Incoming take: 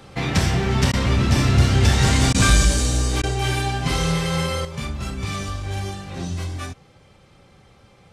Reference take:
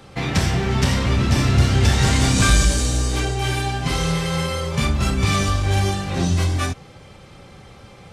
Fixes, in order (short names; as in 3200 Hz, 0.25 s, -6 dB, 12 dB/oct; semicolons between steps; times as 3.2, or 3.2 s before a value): interpolate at 0.92/2.33/3.22, 13 ms; gain 0 dB, from 4.65 s +8.5 dB